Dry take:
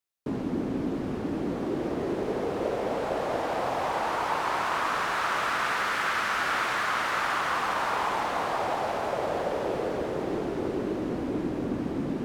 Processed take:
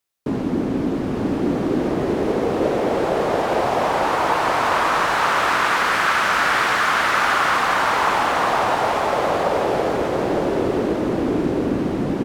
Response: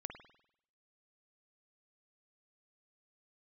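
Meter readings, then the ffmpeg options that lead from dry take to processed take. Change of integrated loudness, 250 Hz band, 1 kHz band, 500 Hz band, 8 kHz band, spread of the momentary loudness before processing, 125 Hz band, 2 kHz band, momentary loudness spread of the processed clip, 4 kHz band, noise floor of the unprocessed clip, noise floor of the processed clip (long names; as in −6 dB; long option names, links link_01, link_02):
+9.5 dB, +9.0 dB, +9.5 dB, +9.5 dB, +9.5 dB, 5 LU, +9.0 dB, +9.5 dB, 5 LU, +9.5 dB, −33 dBFS, −24 dBFS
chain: -af "aecho=1:1:906:0.596,volume=8dB"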